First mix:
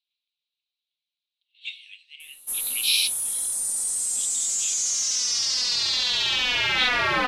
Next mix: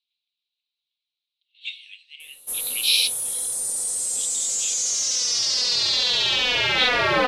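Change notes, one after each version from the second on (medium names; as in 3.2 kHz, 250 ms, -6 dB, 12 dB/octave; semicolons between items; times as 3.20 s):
master: add graphic EQ 125/500/4000 Hz +5/+10/+3 dB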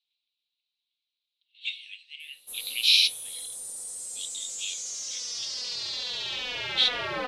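background -12.0 dB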